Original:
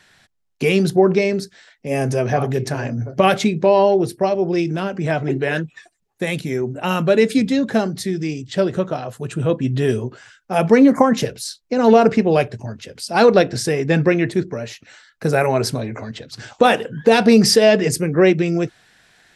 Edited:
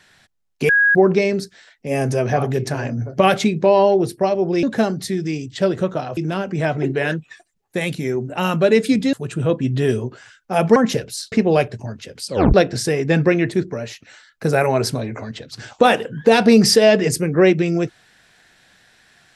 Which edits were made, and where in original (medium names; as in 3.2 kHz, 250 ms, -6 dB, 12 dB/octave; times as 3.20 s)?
0.69–0.95 s: bleep 1.65 kHz -11 dBFS
7.59–9.13 s: move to 4.63 s
10.76–11.04 s: delete
11.60–12.12 s: delete
13.07 s: tape stop 0.27 s